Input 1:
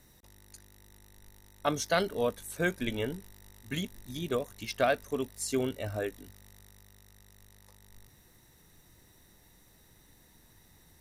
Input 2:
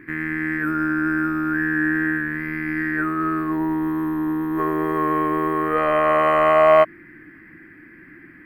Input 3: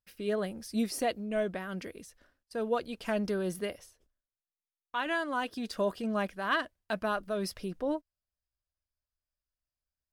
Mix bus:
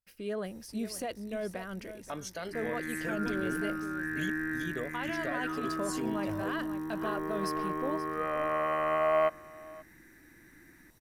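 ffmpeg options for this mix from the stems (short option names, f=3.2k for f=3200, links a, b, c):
-filter_complex "[0:a]alimiter=limit=-21.5dB:level=0:latency=1:release=423,adelay=450,volume=-3dB[a];[1:a]adelay=2450,volume=-13dB,asplit=2[b][c];[c]volume=-22dB[d];[2:a]volume=-2.5dB,asplit=2[e][f];[f]volume=-14.5dB[g];[a][e]amix=inputs=2:normalize=0,equalizer=f=3.7k:t=o:w=0.25:g=-5.5,alimiter=level_in=3.5dB:limit=-24dB:level=0:latency=1:release=25,volume=-3.5dB,volume=0dB[h];[d][g]amix=inputs=2:normalize=0,aecho=0:1:529:1[i];[b][h][i]amix=inputs=3:normalize=0"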